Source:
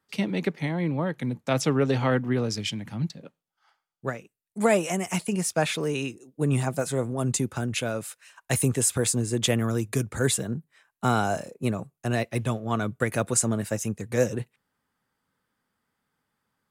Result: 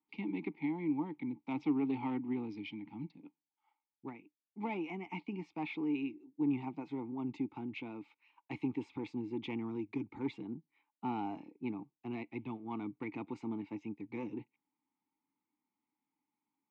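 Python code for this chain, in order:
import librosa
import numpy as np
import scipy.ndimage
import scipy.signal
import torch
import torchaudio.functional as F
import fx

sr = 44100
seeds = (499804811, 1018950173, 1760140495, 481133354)

y = scipy.signal.sosfilt(scipy.signal.butter(4, 4300.0, 'lowpass', fs=sr, output='sos'), x)
y = 10.0 ** (-15.5 / 20.0) * np.tanh(y / 10.0 ** (-15.5 / 20.0))
y = fx.vowel_filter(y, sr, vowel='u')
y = F.gain(torch.from_numpy(y), 1.5).numpy()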